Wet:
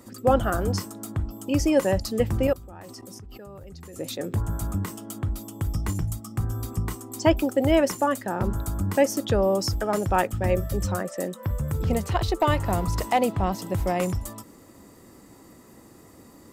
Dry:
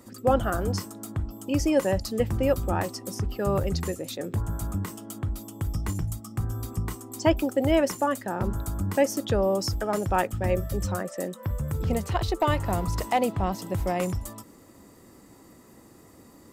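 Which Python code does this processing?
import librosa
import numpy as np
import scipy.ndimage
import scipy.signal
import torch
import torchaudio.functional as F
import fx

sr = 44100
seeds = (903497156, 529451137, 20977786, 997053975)

y = fx.level_steps(x, sr, step_db=22, at=(2.47, 3.96))
y = y * 10.0 ** (2.0 / 20.0)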